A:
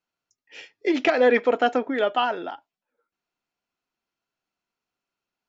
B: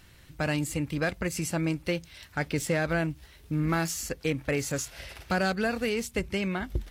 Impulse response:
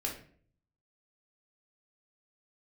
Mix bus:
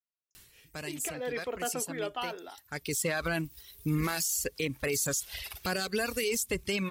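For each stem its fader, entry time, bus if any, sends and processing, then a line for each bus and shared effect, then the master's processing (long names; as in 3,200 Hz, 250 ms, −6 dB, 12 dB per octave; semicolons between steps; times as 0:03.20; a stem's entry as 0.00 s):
0:00.95 −23 dB → 0:01.71 −15 dB, 0.00 s, no send, no processing
0.0 dB, 0.35 s, no send, reverb reduction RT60 1.7 s; high-shelf EQ 5,300 Hz +11 dB; automatic ducking −14 dB, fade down 0.30 s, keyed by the first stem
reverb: not used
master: high-shelf EQ 2,700 Hz +9 dB; hollow resonant body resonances 410/1,100 Hz, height 7 dB; brickwall limiter −21 dBFS, peak gain reduction 16 dB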